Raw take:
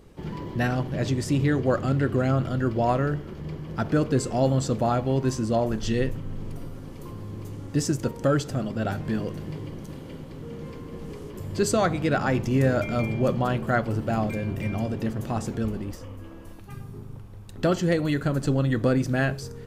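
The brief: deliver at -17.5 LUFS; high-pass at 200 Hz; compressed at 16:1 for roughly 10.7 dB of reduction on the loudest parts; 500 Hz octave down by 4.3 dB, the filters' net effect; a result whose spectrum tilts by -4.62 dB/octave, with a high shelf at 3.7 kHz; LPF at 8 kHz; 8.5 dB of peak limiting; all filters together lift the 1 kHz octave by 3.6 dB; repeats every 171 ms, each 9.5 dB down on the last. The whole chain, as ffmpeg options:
-af "highpass=200,lowpass=8000,equalizer=f=500:t=o:g=-8,equalizer=f=1000:t=o:g=8,highshelf=f=3700:g=6,acompressor=threshold=0.0447:ratio=16,alimiter=limit=0.0668:level=0:latency=1,aecho=1:1:171|342|513|684:0.335|0.111|0.0365|0.012,volume=7.94"

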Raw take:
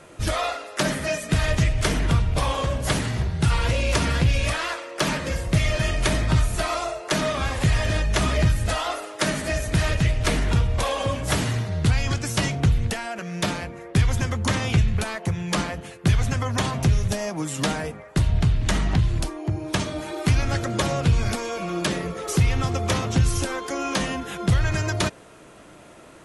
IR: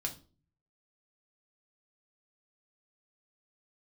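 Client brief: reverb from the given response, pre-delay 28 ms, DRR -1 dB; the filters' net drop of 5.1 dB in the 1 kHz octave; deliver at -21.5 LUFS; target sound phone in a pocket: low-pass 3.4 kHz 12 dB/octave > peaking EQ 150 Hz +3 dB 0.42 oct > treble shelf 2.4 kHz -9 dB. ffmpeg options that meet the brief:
-filter_complex "[0:a]equalizer=f=1000:t=o:g=-5,asplit=2[s0][s1];[1:a]atrim=start_sample=2205,adelay=28[s2];[s1][s2]afir=irnorm=-1:irlink=0,volume=1.06[s3];[s0][s3]amix=inputs=2:normalize=0,lowpass=3400,equalizer=f=150:t=o:w=0.42:g=3,highshelf=f=2400:g=-9,volume=0.794"

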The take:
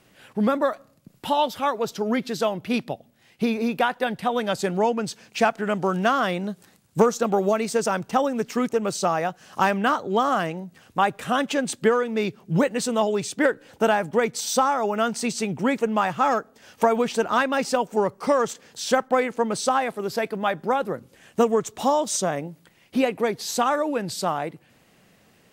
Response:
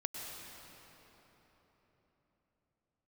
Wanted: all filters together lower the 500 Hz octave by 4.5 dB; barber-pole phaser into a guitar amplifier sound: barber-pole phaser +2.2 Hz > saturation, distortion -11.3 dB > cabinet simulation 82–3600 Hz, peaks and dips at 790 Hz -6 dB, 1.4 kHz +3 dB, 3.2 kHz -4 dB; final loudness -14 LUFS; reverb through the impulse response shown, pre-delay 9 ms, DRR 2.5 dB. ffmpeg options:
-filter_complex "[0:a]equalizer=f=500:t=o:g=-4.5,asplit=2[s0][s1];[1:a]atrim=start_sample=2205,adelay=9[s2];[s1][s2]afir=irnorm=-1:irlink=0,volume=0.668[s3];[s0][s3]amix=inputs=2:normalize=0,asplit=2[s4][s5];[s5]afreqshift=2.2[s6];[s4][s6]amix=inputs=2:normalize=1,asoftclip=threshold=0.075,highpass=82,equalizer=f=790:t=q:w=4:g=-6,equalizer=f=1400:t=q:w=4:g=3,equalizer=f=3200:t=q:w=4:g=-4,lowpass=f=3600:w=0.5412,lowpass=f=3600:w=1.3066,volume=6.68"

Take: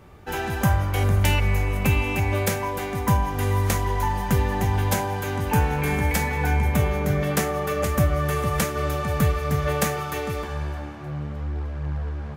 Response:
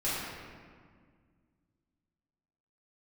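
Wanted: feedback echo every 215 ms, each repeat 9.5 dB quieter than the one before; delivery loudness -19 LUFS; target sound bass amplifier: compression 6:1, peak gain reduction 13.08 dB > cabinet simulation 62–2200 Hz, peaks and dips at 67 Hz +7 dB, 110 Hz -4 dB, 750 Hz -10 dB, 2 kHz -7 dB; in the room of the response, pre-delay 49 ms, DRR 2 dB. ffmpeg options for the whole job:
-filter_complex "[0:a]aecho=1:1:215|430|645|860:0.335|0.111|0.0365|0.012,asplit=2[s0][s1];[1:a]atrim=start_sample=2205,adelay=49[s2];[s1][s2]afir=irnorm=-1:irlink=0,volume=0.299[s3];[s0][s3]amix=inputs=2:normalize=0,acompressor=threshold=0.0631:ratio=6,highpass=f=62:w=0.5412,highpass=f=62:w=1.3066,equalizer=f=67:t=q:w=4:g=7,equalizer=f=110:t=q:w=4:g=-4,equalizer=f=750:t=q:w=4:g=-10,equalizer=f=2000:t=q:w=4:g=-7,lowpass=f=2200:w=0.5412,lowpass=f=2200:w=1.3066,volume=3.35"

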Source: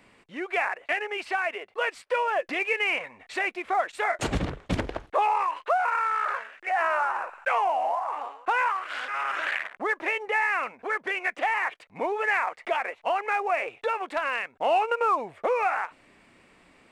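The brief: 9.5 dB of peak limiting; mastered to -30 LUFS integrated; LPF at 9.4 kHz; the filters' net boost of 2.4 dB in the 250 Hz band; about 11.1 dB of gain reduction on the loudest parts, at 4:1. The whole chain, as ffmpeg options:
-af "lowpass=9400,equalizer=f=250:t=o:g=3.5,acompressor=threshold=0.0224:ratio=4,volume=2.66,alimiter=limit=0.0944:level=0:latency=1"

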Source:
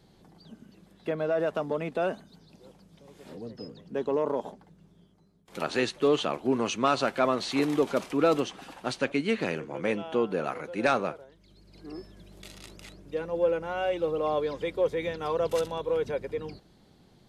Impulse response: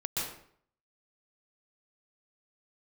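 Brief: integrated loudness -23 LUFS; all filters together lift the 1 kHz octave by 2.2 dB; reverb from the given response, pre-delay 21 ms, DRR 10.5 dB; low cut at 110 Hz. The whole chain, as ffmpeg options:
-filter_complex "[0:a]highpass=110,equalizer=f=1000:t=o:g=3,asplit=2[s0][s1];[1:a]atrim=start_sample=2205,adelay=21[s2];[s1][s2]afir=irnorm=-1:irlink=0,volume=0.168[s3];[s0][s3]amix=inputs=2:normalize=0,volume=1.78"

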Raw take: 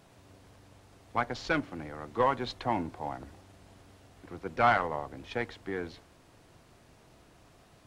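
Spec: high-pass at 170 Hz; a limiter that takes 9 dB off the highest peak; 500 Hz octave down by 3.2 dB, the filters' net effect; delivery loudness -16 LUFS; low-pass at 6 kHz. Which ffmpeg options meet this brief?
-af "highpass=170,lowpass=6000,equalizer=f=500:t=o:g=-4,volume=12.6,alimiter=limit=0.944:level=0:latency=1"

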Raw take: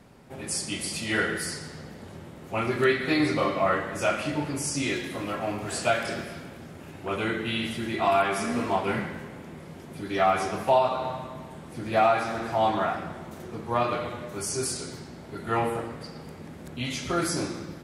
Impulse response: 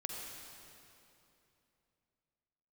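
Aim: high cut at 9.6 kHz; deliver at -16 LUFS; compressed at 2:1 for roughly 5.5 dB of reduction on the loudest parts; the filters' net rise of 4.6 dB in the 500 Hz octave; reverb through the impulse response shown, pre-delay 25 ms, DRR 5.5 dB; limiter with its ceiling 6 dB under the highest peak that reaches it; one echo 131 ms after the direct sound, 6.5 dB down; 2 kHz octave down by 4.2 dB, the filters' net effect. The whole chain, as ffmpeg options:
-filter_complex "[0:a]lowpass=9600,equalizer=f=500:t=o:g=7,equalizer=f=2000:t=o:g=-6,acompressor=threshold=0.0631:ratio=2,alimiter=limit=0.126:level=0:latency=1,aecho=1:1:131:0.473,asplit=2[s0][s1];[1:a]atrim=start_sample=2205,adelay=25[s2];[s1][s2]afir=irnorm=-1:irlink=0,volume=0.531[s3];[s0][s3]amix=inputs=2:normalize=0,volume=3.98"

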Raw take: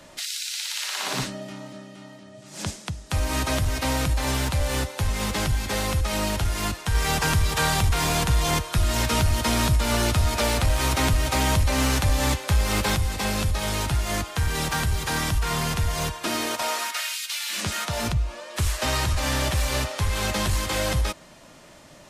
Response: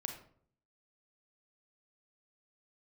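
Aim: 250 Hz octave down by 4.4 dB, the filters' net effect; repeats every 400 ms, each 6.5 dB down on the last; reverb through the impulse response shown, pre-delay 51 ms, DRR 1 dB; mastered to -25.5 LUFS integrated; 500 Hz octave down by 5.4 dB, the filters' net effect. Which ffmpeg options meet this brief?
-filter_complex "[0:a]equalizer=f=250:t=o:g=-4.5,equalizer=f=500:t=o:g=-6,aecho=1:1:400|800|1200|1600|2000|2400:0.473|0.222|0.105|0.0491|0.0231|0.0109,asplit=2[s0][s1];[1:a]atrim=start_sample=2205,adelay=51[s2];[s1][s2]afir=irnorm=-1:irlink=0,volume=1[s3];[s0][s3]amix=inputs=2:normalize=0,volume=0.668"

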